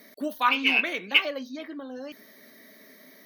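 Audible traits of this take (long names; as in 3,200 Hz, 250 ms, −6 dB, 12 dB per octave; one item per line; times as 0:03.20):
background noise floor −53 dBFS
spectral slope +2.0 dB per octave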